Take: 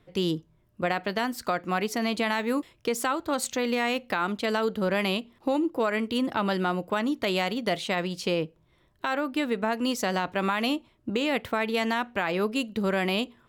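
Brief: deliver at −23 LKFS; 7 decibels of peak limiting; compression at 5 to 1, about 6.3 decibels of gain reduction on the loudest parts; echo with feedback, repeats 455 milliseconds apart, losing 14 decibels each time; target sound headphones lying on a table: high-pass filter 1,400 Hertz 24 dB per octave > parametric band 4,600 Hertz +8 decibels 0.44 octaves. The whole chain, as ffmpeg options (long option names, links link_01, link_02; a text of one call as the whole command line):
ffmpeg -i in.wav -af "acompressor=threshold=-29dB:ratio=5,alimiter=limit=-24dB:level=0:latency=1,highpass=frequency=1400:width=0.5412,highpass=frequency=1400:width=1.3066,equalizer=frequency=4600:width_type=o:width=0.44:gain=8,aecho=1:1:455|910:0.2|0.0399,volume=15.5dB" out.wav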